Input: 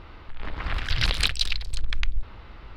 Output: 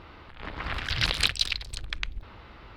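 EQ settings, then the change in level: high-pass 95 Hz 6 dB/octave; 0.0 dB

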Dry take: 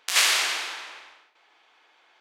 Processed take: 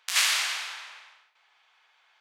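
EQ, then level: high-pass 870 Hz 12 dB/octave; -3.0 dB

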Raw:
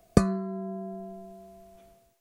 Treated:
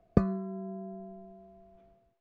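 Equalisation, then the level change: tape spacing loss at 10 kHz 35 dB; -3.0 dB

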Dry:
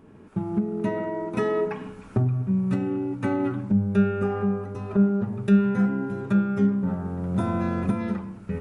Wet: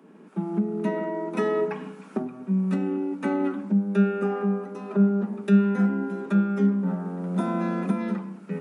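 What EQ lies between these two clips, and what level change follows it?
steep high-pass 160 Hz 96 dB/octave; 0.0 dB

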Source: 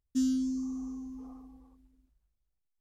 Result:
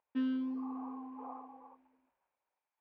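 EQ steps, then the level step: distance through air 330 m; cabinet simulation 460–3200 Hz, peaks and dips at 540 Hz +7 dB, 960 Hz +7 dB, 1.6 kHz +5 dB, 2.4 kHz +8 dB; peaking EQ 870 Hz +9.5 dB 0.76 oct; +5.0 dB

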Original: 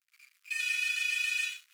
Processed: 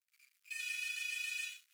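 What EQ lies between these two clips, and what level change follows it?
high-pass 1.3 kHz 6 dB/octave; treble shelf 6.8 kHz +5.5 dB; -9.0 dB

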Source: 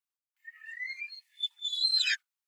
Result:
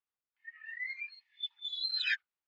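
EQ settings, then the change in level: distance through air 260 m; treble shelf 6.2 kHz -5.5 dB; +2.0 dB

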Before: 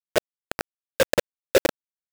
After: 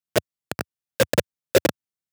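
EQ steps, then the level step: high-pass 88 Hz 24 dB/octave; tone controls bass +10 dB, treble +2 dB; 0.0 dB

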